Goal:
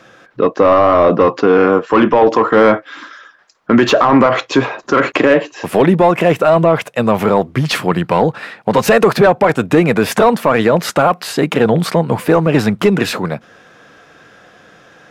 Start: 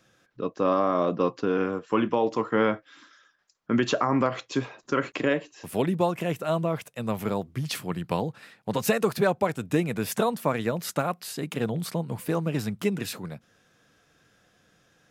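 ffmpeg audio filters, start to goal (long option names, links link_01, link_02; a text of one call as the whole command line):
ffmpeg -i in.wav -filter_complex "[0:a]asplit=2[link_01][link_02];[link_02]highpass=frequency=720:poles=1,volume=16dB,asoftclip=type=tanh:threshold=-10dB[link_03];[link_01][link_03]amix=inputs=2:normalize=0,lowpass=frequency=1100:poles=1,volume=-6dB,acontrast=52,alimiter=level_in=10.5dB:limit=-1dB:release=50:level=0:latency=1,volume=-1dB" out.wav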